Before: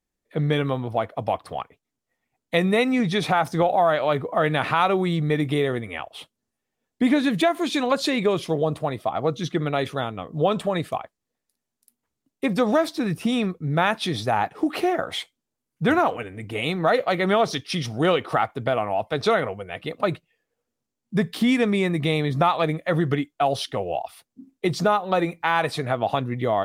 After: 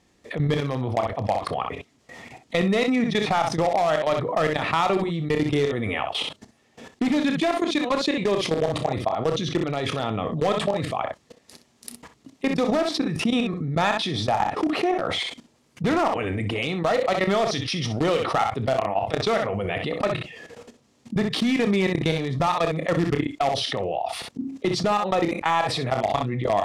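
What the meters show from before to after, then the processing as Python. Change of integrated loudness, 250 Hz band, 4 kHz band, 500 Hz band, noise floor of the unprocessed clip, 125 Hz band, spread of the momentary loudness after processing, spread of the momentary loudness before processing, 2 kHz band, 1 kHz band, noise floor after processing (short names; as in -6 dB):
-1.0 dB, -0.5 dB, +2.0 dB, -0.5 dB, -84 dBFS, -0.5 dB, 7 LU, 9 LU, -1.5 dB, -0.5 dB, -63 dBFS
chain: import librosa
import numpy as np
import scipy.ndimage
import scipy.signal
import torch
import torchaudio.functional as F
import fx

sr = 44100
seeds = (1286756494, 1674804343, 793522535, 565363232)

p1 = fx.vibrato(x, sr, rate_hz=1.6, depth_cents=11.0)
p2 = scipy.signal.sosfilt(scipy.signal.butter(2, 63.0, 'highpass', fs=sr, output='sos'), p1)
p3 = (np.mod(10.0 ** (13.5 / 20.0) * p2 + 1.0, 2.0) - 1.0) / 10.0 ** (13.5 / 20.0)
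p4 = p2 + (p3 * 10.0 ** (-11.0 / 20.0))
p5 = fx.level_steps(p4, sr, step_db=20)
p6 = scipy.signal.sosfilt(scipy.signal.butter(2, 6500.0, 'lowpass', fs=sr, output='sos'), p5)
p7 = fx.notch(p6, sr, hz=1500.0, q=11.0)
p8 = p7 + fx.room_early_taps(p7, sr, ms=(30, 63), db=(-14.0, -12.0), dry=0)
p9 = fx.env_flatten(p8, sr, amount_pct=70)
y = p9 * 10.0 ** (-2.0 / 20.0)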